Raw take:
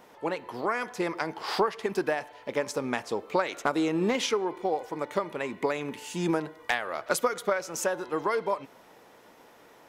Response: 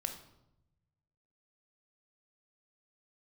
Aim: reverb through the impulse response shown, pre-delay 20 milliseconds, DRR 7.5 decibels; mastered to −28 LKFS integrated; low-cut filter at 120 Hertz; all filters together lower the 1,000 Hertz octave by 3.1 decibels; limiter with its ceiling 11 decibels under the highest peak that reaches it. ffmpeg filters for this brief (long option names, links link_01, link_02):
-filter_complex "[0:a]highpass=120,equalizer=frequency=1000:width_type=o:gain=-4,alimiter=limit=-22.5dB:level=0:latency=1,asplit=2[link_01][link_02];[1:a]atrim=start_sample=2205,adelay=20[link_03];[link_02][link_03]afir=irnorm=-1:irlink=0,volume=-8dB[link_04];[link_01][link_04]amix=inputs=2:normalize=0,volume=5.5dB"